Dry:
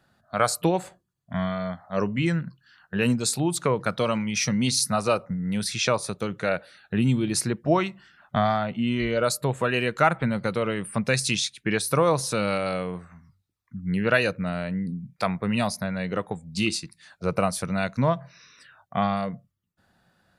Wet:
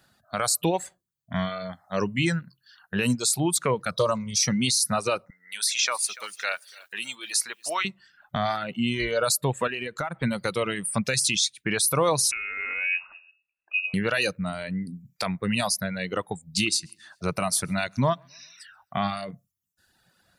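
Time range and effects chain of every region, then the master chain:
3.91–4.43 s: high-order bell 2.3 kHz -15.5 dB 1.1 oct + comb 1.8 ms, depth 86% + loudspeaker Doppler distortion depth 0.12 ms
5.30–7.85 s: high-pass 1.1 kHz + bit-crushed delay 290 ms, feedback 35%, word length 9-bit, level -14.5 dB
9.67–10.23 s: treble shelf 2.5 kHz -8 dB + compression 16:1, threshold -25 dBFS
12.31–13.94 s: frequency inversion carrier 2.7 kHz + compressor with a negative ratio -32 dBFS
16.52–19.31 s: band-stop 500 Hz, Q 5.8 + feedback delay 132 ms, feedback 50%, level -23 dB
whole clip: reverb removal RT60 1 s; treble shelf 2.8 kHz +11 dB; peak limiter -13 dBFS

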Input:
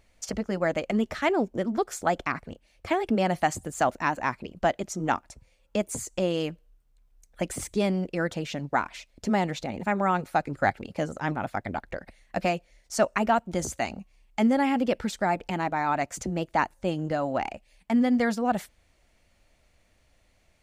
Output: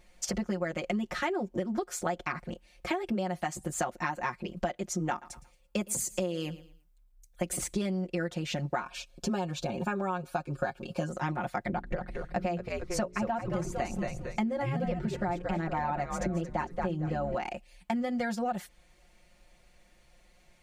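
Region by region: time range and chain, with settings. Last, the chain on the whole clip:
5.10–7.57 s: treble shelf 11 kHz +10.5 dB + feedback delay 114 ms, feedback 33%, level -20.5 dB + three bands expanded up and down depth 40%
8.81–11.10 s: Butterworth band-stop 2 kHz, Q 4 + comb 7.4 ms, depth 37%
11.68–17.35 s: tilt EQ -2 dB/octave + hum notches 60/120/180/240/300/360/420 Hz + frequency-shifting echo 226 ms, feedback 37%, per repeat -98 Hz, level -6.5 dB
whole clip: comb 5.6 ms, depth 100%; compression 10:1, threshold -28 dBFS

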